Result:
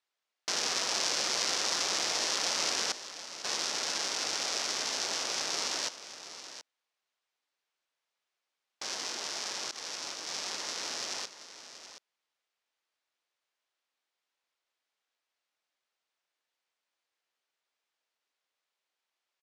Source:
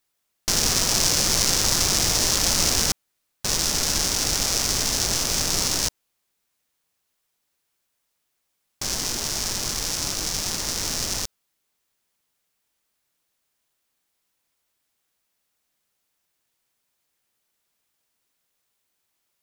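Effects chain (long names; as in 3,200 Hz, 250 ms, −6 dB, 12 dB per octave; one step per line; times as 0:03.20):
band-pass filter 460–4,800 Hz
single-tap delay 726 ms −12.5 dB
0:09.71–0:10.29: downward expander −27 dBFS
level −5.5 dB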